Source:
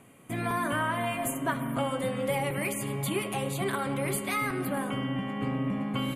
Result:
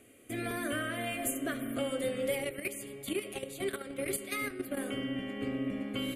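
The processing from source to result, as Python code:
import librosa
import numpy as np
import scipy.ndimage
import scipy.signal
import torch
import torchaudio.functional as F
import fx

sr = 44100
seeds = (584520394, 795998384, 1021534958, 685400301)

y = fx.level_steps(x, sr, step_db=10, at=(2.35, 4.77))
y = fx.fixed_phaser(y, sr, hz=390.0, stages=4)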